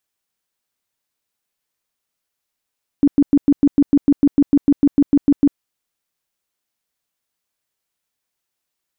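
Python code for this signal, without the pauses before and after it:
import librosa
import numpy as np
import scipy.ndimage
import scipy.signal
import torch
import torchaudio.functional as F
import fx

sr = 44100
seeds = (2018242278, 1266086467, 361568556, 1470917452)

y = fx.tone_burst(sr, hz=284.0, cycles=13, every_s=0.15, bursts=17, level_db=-7.5)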